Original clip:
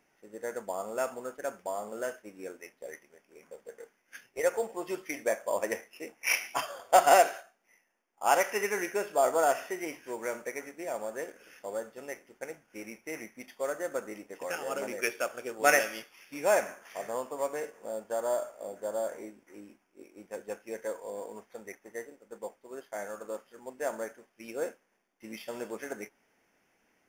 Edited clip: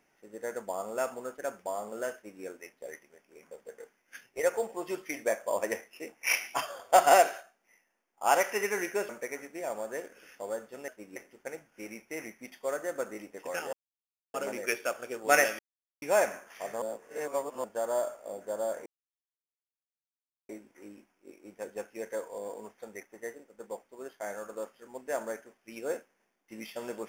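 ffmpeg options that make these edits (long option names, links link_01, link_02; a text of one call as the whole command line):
ffmpeg -i in.wav -filter_complex "[0:a]asplit=10[link_01][link_02][link_03][link_04][link_05][link_06][link_07][link_08][link_09][link_10];[link_01]atrim=end=9.092[link_11];[link_02]atrim=start=10.328:end=12.122[link_12];[link_03]atrim=start=2.138:end=2.422[link_13];[link_04]atrim=start=12.118:end=14.69,asetpts=PTS-STARTPTS,afade=type=out:start_time=2.568:duration=0.004:curve=hsin,apad=pad_dur=0.61[link_14];[link_05]atrim=start=14.69:end=15.94,asetpts=PTS-STARTPTS,afade=type=in:duration=0.004:curve=hsin,afade=type=out:start_time=1.246:duration=0.004:curve=hsin[link_15];[link_06]atrim=start=15.94:end=16.37,asetpts=PTS-STARTPTS,volume=0[link_16];[link_07]atrim=start=16.37:end=17.172,asetpts=PTS-STARTPTS,afade=type=in:duration=0.004:curve=hsin[link_17];[link_08]atrim=start=17.168:end=17.992,asetpts=PTS-STARTPTS,areverse[link_18];[link_09]atrim=start=17.988:end=19.21,asetpts=PTS-STARTPTS,afade=type=out:start_time=1.218:duration=0.004:curve=hsin,apad=pad_dur=1.63[link_19];[link_10]atrim=start=19.21,asetpts=PTS-STARTPTS,afade=type=in:duration=0.004:curve=hsin[link_20];[link_11][link_12]acrossfade=duration=0.004:curve1=hsin:curve2=hsin[link_21];[link_21][link_13]acrossfade=duration=0.004:curve1=hsin:curve2=hsin[link_22];[link_14][link_15][link_16][link_17]concat=n=4:v=0:a=1[link_23];[link_22][link_23]acrossfade=duration=0.004:curve1=hsin:curve2=hsin[link_24];[link_24][link_18]acrossfade=duration=0.004:curve1=hsin:curve2=hsin[link_25];[link_19][link_20]concat=n=2:v=0:a=1[link_26];[link_25][link_26]acrossfade=duration=0.004:curve1=hsin:curve2=hsin" out.wav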